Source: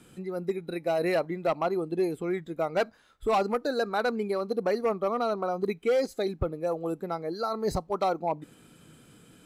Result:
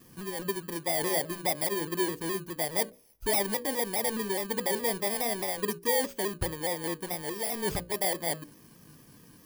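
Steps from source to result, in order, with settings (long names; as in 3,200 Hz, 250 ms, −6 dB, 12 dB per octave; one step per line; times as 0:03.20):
samples in bit-reversed order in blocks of 32 samples
in parallel at −10 dB: wrap-around overflow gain 32.5 dB
on the sum: mains-hum notches 60/120/180/240/300/360/420/480/540/600 Hz
pitch modulation by a square or saw wave saw down 4.8 Hz, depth 100 cents
level −1.5 dB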